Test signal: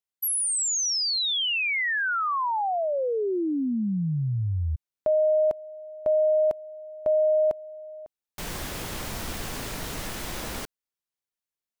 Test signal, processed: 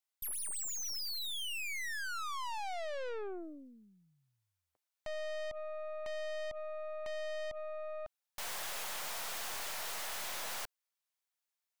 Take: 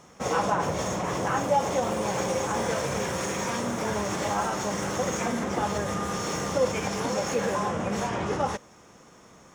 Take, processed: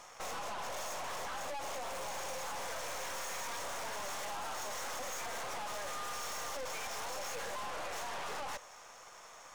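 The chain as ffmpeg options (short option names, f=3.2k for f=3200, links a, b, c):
-af "highpass=f=600:w=0.5412,highpass=f=600:w=1.3066,acompressor=threshold=-31dB:ratio=10:attack=1.2:release=100:knee=1:detection=rms,aeval=exprs='(tanh(200*val(0)+0.8)-tanh(0.8))/200':c=same,volume=6.5dB"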